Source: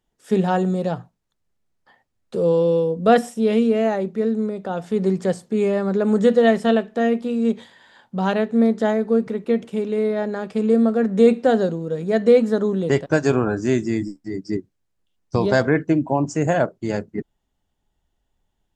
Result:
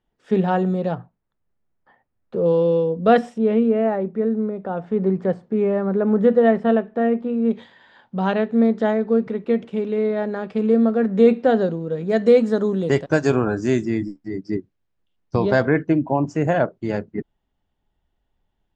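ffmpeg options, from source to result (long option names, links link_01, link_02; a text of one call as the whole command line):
ffmpeg -i in.wav -af "asetnsamples=nb_out_samples=441:pad=0,asendcmd='0.95 lowpass f 1900;2.46 lowpass f 3600;3.38 lowpass f 1700;7.51 lowpass f 3600;12.1 lowpass f 7400;13.85 lowpass f 3600',lowpass=3200" out.wav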